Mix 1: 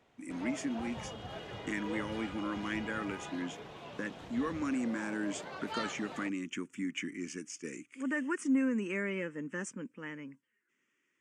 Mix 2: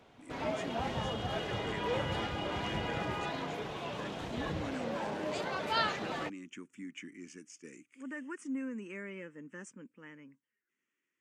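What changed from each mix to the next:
speech -8.5 dB; background +8.0 dB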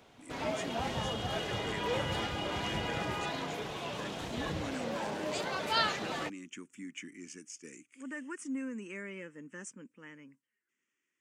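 master: add high shelf 4300 Hz +9 dB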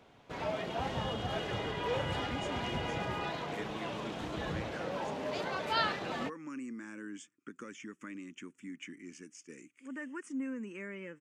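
speech: entry +1.85 s; master: add high shelf 4300 Hz -9 dB

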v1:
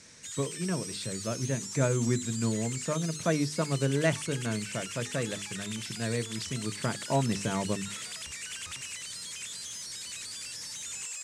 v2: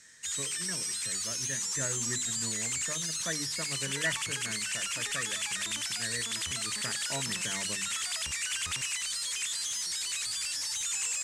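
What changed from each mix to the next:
speech: add ladder low-pass 1900 Hz, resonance 85%; background +6.5 dB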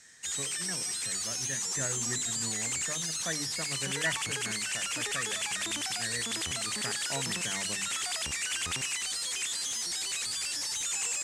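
background: add bell 340 Hz +10.5 dB 2.1 oct; master: remove Butterworth band-stop 760 Hz, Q 7.1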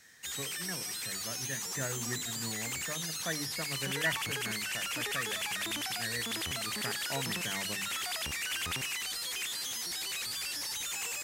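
master: remove synth low-pass 8000 Hz, resonance Q 2.5

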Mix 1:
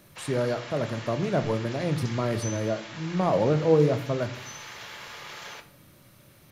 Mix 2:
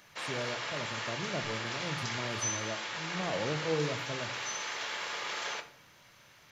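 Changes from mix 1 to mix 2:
speech -12.0 dB; background +4.5 dB

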